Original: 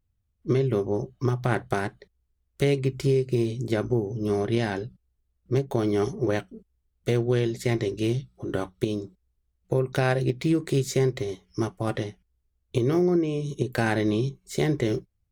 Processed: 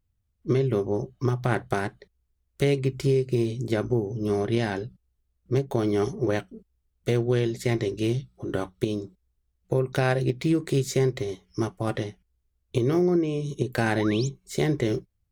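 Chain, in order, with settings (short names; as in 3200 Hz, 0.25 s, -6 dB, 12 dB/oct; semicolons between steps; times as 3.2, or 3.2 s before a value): painted sound rise, 13.96–14.28, 560–7800 Hz -38 dBFS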